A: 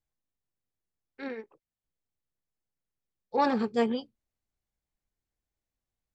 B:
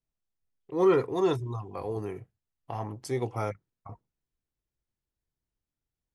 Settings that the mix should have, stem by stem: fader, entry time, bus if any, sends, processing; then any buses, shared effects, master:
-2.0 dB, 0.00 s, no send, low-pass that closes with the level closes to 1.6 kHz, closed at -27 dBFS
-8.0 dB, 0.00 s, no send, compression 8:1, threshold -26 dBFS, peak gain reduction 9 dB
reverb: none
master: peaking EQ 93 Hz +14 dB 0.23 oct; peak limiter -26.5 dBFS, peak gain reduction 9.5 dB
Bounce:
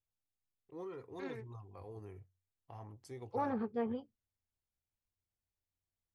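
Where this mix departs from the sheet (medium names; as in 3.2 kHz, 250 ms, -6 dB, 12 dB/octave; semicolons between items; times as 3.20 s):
stem A -2.0 dB -> -8.5 dB; stem B -8.0 dB -> -16.5 dB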